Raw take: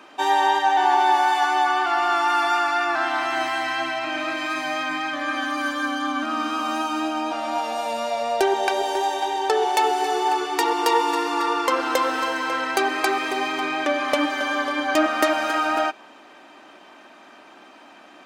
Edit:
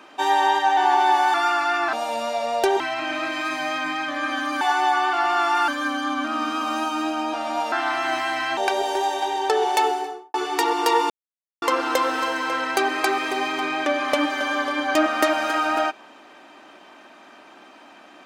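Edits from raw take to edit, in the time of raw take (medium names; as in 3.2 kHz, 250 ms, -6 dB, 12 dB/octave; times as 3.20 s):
1.34–2.41 s: move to 5.66 s
3.00–3.85 s: swap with 7.70–8.57 s
9.79–10.34 s: studio fade out
11.10–11.62 s: mute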